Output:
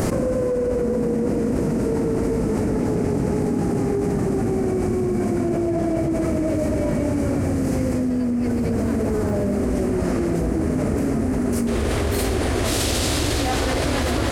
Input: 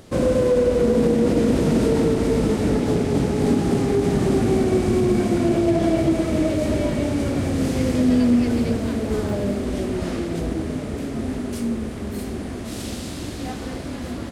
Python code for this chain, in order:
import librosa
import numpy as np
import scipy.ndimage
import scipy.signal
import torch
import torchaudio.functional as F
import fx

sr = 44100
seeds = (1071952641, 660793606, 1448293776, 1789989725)

y = fx.peak_eq(x, sr, hz=fx.steps((0.0, 3500.0), (11.67, 200.0)), db=-14.5, octaves=0.76)
y = fx.env_flatten(y, sr, amount_pct=100)
y = y * 10.0 ** (-7.0 / 20.0)